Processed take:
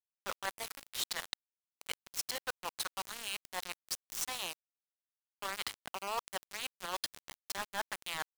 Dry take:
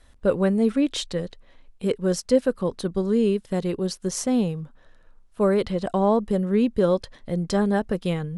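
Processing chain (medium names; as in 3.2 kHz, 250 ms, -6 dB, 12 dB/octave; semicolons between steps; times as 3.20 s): tracing distortion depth 0.036 ms; steep high-pass 800 Hz 36 dB/octave; treble shelf 7.6 kHz +7 dB; reverse; compression 16:1, threshold -43 dBFS, peak gain reduction 20.5 dB; reverse; small samples zeroed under -42 dBFS; trim +10 dB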